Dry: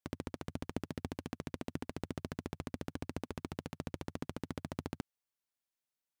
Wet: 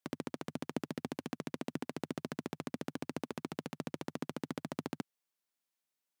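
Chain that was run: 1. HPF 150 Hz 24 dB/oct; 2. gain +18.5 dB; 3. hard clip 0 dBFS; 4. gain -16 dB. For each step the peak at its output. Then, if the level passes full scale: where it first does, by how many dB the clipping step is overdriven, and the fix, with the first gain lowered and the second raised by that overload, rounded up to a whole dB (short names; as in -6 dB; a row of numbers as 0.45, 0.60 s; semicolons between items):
-23.0, -4.5, -4.5, -20.5 dBFS; no overload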